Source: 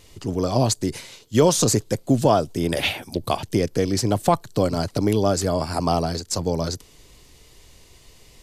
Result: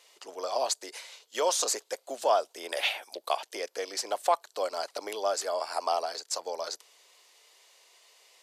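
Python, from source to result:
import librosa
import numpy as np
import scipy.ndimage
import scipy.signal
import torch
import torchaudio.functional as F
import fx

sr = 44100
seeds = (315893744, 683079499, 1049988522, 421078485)

y = scipy.signal.sosfilt(scipy.signal.butter(4, 560.0, 'highpass', fs=sr, output='sos'), x)
y = fx.high_shelf(y, sr, hz=10000.0, db=-6.5)
y = F.gain(torch.from_numpy(y), -4.5).numpy()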